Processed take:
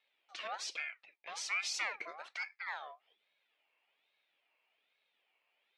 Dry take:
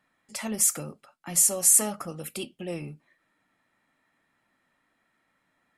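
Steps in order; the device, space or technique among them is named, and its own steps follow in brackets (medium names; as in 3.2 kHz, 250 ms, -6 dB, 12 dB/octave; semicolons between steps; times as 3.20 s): voice changer toy (ring modulator with a swept carrier 1.4 kHz, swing 40%, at 1.2 Hz; cabinet simulation 590–4600 Hz, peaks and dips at 1.1 kHz -5 dB, 1.5 kHz -4 dB, 2.4 kHz +8 dB); trim -4 dB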